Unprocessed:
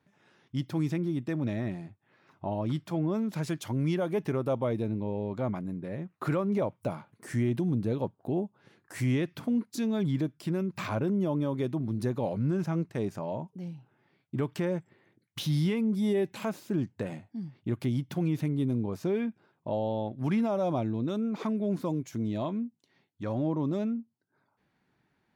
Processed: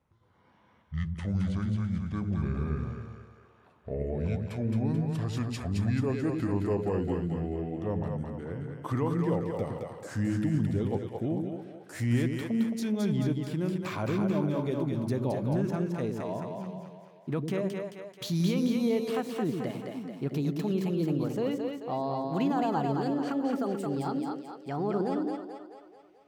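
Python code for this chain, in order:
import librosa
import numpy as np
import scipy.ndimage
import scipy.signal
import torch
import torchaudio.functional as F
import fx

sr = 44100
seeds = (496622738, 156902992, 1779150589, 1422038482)

y = fx.speed_glide(x, sr, from_pct=57, to_pct=136)
y = fx.echo_split(y, sr, split_hz=420.0, low_ms=100, high_ms=218, feedback_pct=52, wet_db=-3.5)
y = y * librosa.db_to_amplitude(-1.5)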